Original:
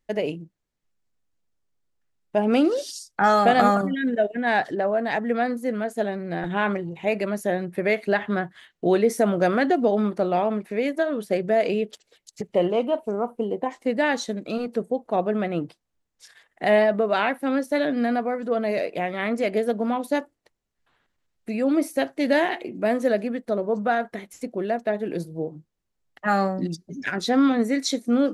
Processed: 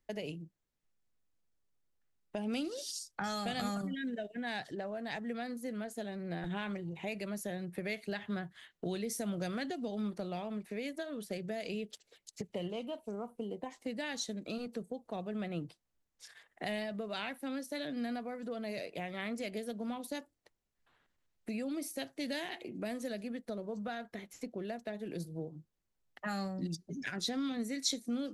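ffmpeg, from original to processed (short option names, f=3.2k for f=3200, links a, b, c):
-filter_complex "[0:a]asettb=1/sr,asplit=3[a][b][c];[a]atrim=end=23.874[d];[b]atrim=start=23.87:end=24.65,asetpts=PTS-STARTPTS,afade=t=in:d=0.004:c=qsin,afade=t=out:st=0.776:d=0.004:c=qsin,equalizer=f=9.3k:w=1.5:g=-7[e];[c]atrim=start=24.646[f];[d][e]acrossfade=d=0.004:c1=hsin:c2=qsin[g];[g][f]acrossfade=d=0.004:c1=qsin:c2=hsin,acrossover=split=160|3000[h][i][j];[i]acompressor=threshold=-36dB:ratio=5[k];[h][k][j]amix=inputs=3:normalize=0,volume=-4.5dB"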